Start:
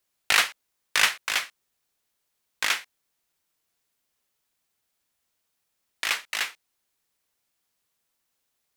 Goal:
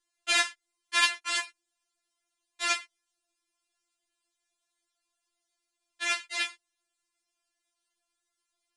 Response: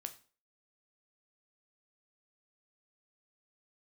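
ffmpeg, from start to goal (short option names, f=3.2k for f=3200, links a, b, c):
-af "aresample=22050,aresample=44100,afftfilt=real='re*4*eq(mod(b,16),0)':imag='im*4*eq(mod(b,16),0)':win_size=2048:overlap=0.75"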